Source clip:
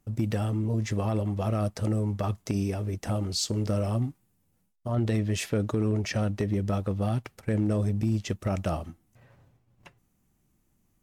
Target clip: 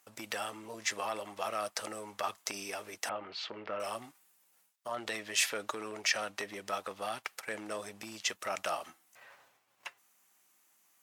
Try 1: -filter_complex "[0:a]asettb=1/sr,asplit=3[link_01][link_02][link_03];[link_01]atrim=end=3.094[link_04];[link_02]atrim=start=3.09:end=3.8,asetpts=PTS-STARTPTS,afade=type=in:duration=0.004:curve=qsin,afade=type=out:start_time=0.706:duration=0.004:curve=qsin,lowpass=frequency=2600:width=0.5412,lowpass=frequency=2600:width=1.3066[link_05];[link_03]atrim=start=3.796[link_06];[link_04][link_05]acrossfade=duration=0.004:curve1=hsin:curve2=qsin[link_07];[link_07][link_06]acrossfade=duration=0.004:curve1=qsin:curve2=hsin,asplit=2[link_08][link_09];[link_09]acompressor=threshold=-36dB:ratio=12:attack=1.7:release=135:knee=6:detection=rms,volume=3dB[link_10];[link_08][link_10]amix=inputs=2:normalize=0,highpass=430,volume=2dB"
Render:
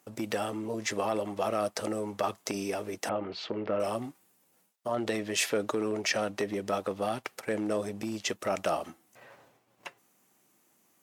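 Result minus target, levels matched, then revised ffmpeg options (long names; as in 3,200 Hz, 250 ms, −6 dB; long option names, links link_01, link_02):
500 Hz band +5.0 dB
-filter_complex "[0:a]asettb=1/sr,asplit=3[link_01][link_02][link_03];[link_01]atrim=end=3.094[link_04];[link_02]atrim=start=3.09:end=3.8,asetpts=PTS-STARTPTS,afade=type=in:duration=0.004:curve=qsin,afade=type=out:start_time=0.706:duration=0.004:curve=qsin,lowpass=frequency=2600:width=0.5412,lowpass=frequency=2600:width=1.3066[link_05];[link_03]atrim=start=3.796[link_06];[link_04][link_05]acrossfade=duration=0.004:curve1=hsin:curve2=qsin[link_07];[link_07][link_06]acrossfade=duration=0.004:curve1=qsin:curve2=hsin,asplit=2[link_08][link_09];[link_09]acompressor=threshold=-36dB:ratio=12:attack=1.7:release=135:knee=6:detection=rms,volume=3dB[link_10];[link_08][link_10]amix=inputs=2:normalize=0,highpass=1000,volume=2dB"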